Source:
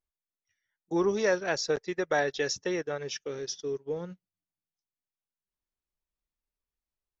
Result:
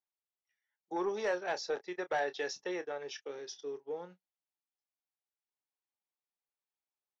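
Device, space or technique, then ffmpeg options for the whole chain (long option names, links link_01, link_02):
intercom: -filter_complex "[0:a]highpass=350,lowpass=4800,equalizer=frequency=820:width_type=o:width=0.32:gain=8,asoftclip=type=tanh:threshold=-18.5dB,asplit=2[link_01][link_02];[link_02]adelay=28,volume=-12dB[link_03];[link_01][link_03]amix=inputs=2:normalize=0,volume=-5.5dB"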